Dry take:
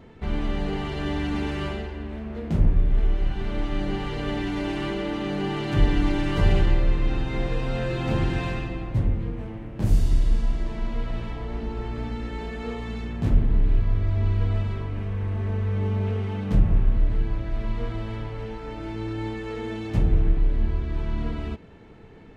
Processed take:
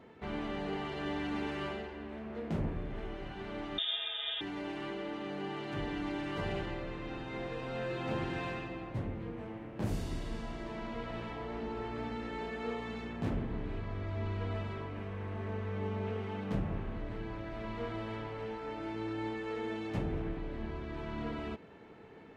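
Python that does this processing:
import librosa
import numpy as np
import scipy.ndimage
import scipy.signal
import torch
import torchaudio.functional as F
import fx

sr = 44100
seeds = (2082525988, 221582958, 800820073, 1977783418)

y = fx.freq_invert(x, sr, carrier_hz=3600, at=(3.78, 4.41))
y = fx.highpass(y, sr, hz=370.0, slope=6)
y = fx.rider(y, sr, range_db=4, speed_s=2.0)
y = fx.high_shelf(y, sr, hz=3500.0, db=-8.0)
y = y * librosa.db_to_amplitude(-5.0)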